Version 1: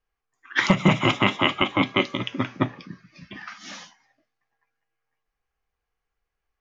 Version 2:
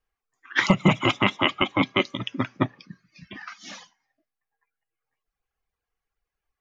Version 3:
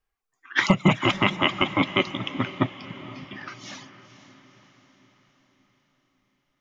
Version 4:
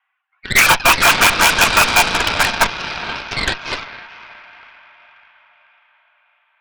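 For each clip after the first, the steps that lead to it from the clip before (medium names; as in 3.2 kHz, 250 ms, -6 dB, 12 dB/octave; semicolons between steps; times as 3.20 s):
reverb removal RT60 1.3 s
band-stop 500 Hz, Q 16; echo that smears into a reverb 487 ms, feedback 53%, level -14.5 dB
mistuned SSB +330 Hz 460–2600 Hz; sine folder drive 13 dB, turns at -5.5 dBFS; Chebyshev shaper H 8 -10 dB, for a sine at -5 dBFS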